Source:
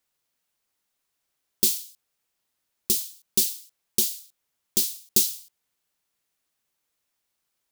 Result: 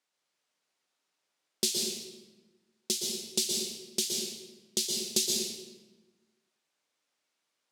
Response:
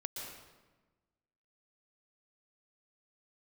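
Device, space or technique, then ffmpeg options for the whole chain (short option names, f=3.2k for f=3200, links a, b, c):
supermarket ceiling speaker: -filter_complex "[0:a]highpass=220,lowpass=7k[a];[1:a]atrim=start_sample=2205[b];[a][b]afir=irnorm=-1:irlink=0,volume=2dB"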